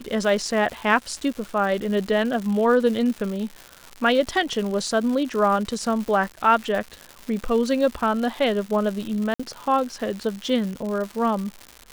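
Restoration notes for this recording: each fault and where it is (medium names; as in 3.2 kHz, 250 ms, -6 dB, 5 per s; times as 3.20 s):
crackle 230 per s -29 dBFS
9.34–9.39 s: dropout 55 ms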